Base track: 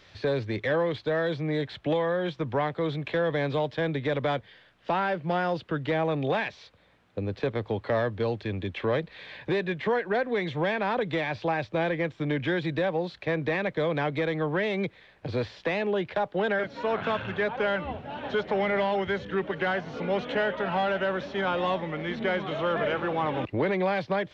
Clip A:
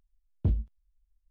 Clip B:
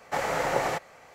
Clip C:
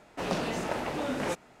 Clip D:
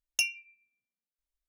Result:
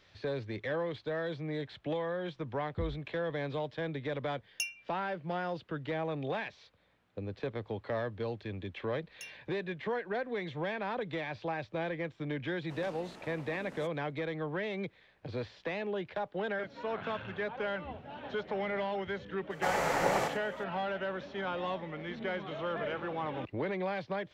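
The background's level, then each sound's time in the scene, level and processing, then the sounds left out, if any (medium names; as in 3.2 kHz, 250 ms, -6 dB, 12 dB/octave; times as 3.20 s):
base track -8.5 dB
2.33 s: add A -12 dB
4.41 s: add D -7.5 dB
9.02 s: add D -16 dB + peak limiter -16 dBFS
12.52 s: add C -17.5 dB
19.50 s: add B -3.5 dB + loudspeakers at several distances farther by 21 m -10 dB, 32 m -10 dB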